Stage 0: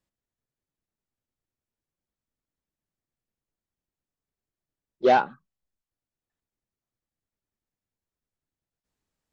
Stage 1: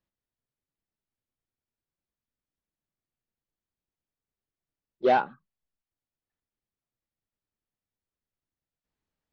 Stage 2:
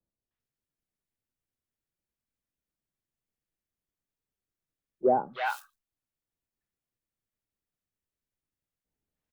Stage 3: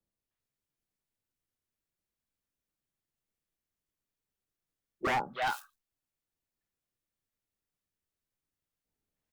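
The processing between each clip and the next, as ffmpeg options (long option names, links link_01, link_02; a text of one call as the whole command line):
ffmpeg -i in.wav -af "lowpass=4400,volume=-3dB" out.wav
ffmpeg -i in.wav -filter_complex "[0:a]acrossover=split=170|860|2000[link_01][link_02][link_03][link_04];[link_03]acrusher=bits=4:mode=log:mix=0:aa=0.000001[link_05];[link_01][link_02][link_05][link_04]amix=inputs=4:normalize=0,acrossover=split=910|4100[link_06][link_07][link_08];[link_07]adelay=310[link_09];[link_08]adelay=400[link_10];[link_06][link_09][link_10]amix=inputs=3:normalize=0" out.wav
ffmpeg -i in.wav -af "bandreject=frequency=60:width_type=h:width=6,bandreject=frequency=120:width_type=h:width=6,bandreject=frequency=180:width_type=h:width=6,bandreject=frequency=240:width_type=h:width=6,aeval=exprs='0.0631*(abs(mod(val(0)/0.0631+3,4)-2)-1)':channel_layout=same" out.wav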